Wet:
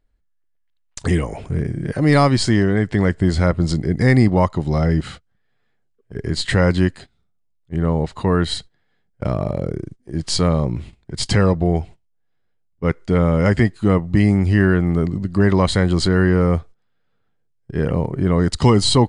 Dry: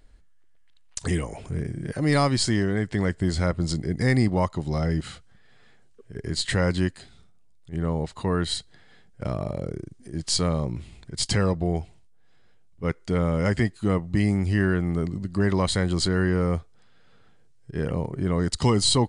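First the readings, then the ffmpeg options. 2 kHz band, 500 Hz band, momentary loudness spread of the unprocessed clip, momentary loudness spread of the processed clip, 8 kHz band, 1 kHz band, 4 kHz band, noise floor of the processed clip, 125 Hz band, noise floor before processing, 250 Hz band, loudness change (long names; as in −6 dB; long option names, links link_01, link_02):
+6.5 dB, +7.5 dB, 11 LU, 12 LU, +0.5 dB, +7.0 dB, +3.5 dB, −65 dBFS, +7.5 dB, −53 dBFS, +7.5 dB, +7.0 dB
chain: -af "highshelf=frequency=4500:gain=-9,agate=range=-20dB:threshold=-41dB:ratio=16:detection=peak,volume=7.5dB"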